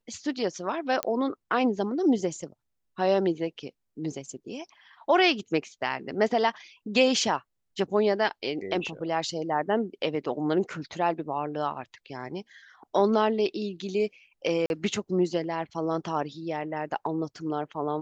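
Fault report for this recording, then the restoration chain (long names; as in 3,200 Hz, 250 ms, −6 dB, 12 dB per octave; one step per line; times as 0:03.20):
0:01.03: click −11 dBFS
0:14.66–0:14.70: drop-out 41 ms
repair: click removal
repair the gap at 0:14.66, 41 ms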